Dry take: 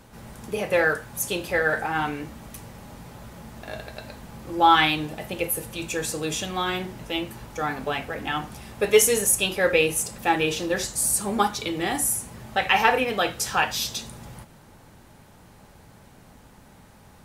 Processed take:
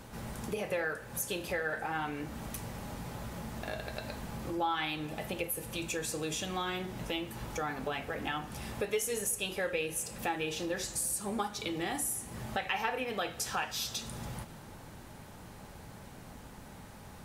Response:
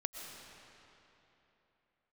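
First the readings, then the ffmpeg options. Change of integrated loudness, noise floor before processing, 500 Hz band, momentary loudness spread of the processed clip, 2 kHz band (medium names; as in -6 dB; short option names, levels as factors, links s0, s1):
-12.0 dB, -51 dBFS, -11.5 dB, 17 LU, -11.5 dB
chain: -filter_complex "[0:a]acompressor=threshold=0.0141:ratio=3,asplit=2[s0][s1];[1:a]atrim=start_sample=2205[s2];[s1][s2]afir=irnorm=-1:irlink=0,volume=0.188[s3];[s0][s3]amix=inputs=2:normalize=0"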